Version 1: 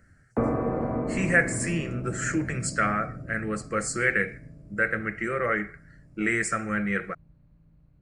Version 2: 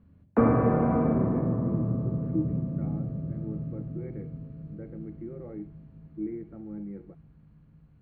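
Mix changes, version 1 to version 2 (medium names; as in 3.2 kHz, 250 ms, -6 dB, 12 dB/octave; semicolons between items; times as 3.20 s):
speech: add cascade formant filter u; background: send +11.0 dB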